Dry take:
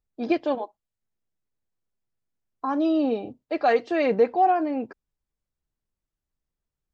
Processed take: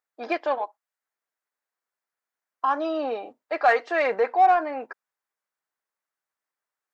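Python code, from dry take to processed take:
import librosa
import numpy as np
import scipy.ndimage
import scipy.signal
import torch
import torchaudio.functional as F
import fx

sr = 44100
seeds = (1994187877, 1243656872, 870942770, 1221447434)

p1 = scipy.signal.sosfilt(scipy.signal.butter(2, 830.0, 'highpass', fs=sr, output='sos'), x)
p2 = fx.high_shelf_res(p1, sr, hz=2300.0, db=-6.5, q=1.5)
p3 = 10.0 ** (-27.5 / 20.0) * np.tanh(p2 / 10.0 ** (-27.5 / 20.0))
p4 = p2 + (p3 * librosa.db_to_amplitude(-7.0))
y = p4 * librosa.db_to_amplitude(4.5)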